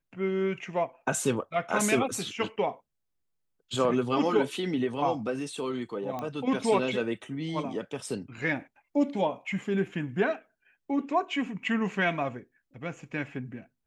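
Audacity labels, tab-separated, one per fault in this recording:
6.190000	6.190000	click −22 dBFS

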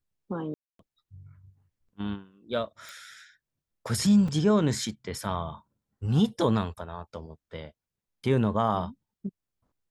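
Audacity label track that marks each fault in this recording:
0.540000	0.790000	drop-out 253 ms
2.890000	2.890000	click
4.280000	4.280000	drop-out 3.9 ms

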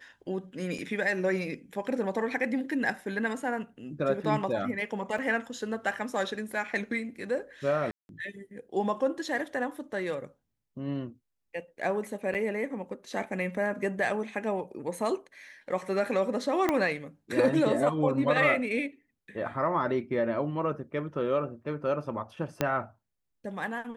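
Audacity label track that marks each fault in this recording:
0.780000	0.780000	drop-out 4.6 ms
5.180000	5.180000	drop-out 3.9 ms
7.910000	8.090000	drop-out 181 ms
12.340000	12.350000	drop-out 7.4 ms
16.690000	16.690000	click −12 dBFS
22.610000	22.610000	click −11 dBFS

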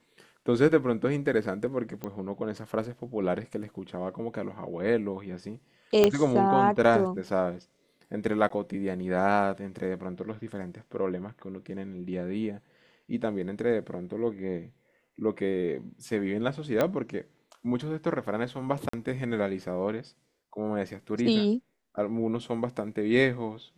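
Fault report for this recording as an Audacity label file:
2.040000	2.040000	click −21 dBFS
6.040000	6.040000	click −7 dBFS
8.490000	8.500000	drop-out 14 ms
16.810000	16.810000	click −12 dBFS
18.890000	18.930000	drop-out 44 ms

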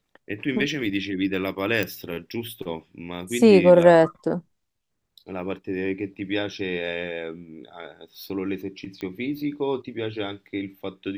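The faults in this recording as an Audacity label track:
1.830000	1.830000	click −11 dBFS
9.010000	9.010000	click −22 dBFS

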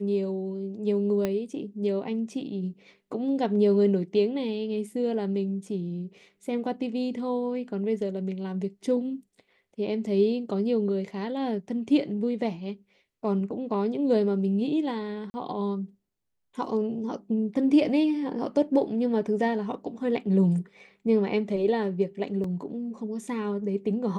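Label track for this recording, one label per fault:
1.250000	1.250000	click −14 dBFS
15.300000	15.340000	drop-out 40 ms
22.440000	22.440000	drop-out 3.4 ms

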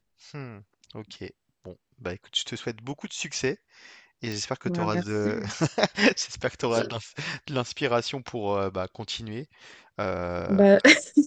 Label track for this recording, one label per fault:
4.320000	4.320000	click

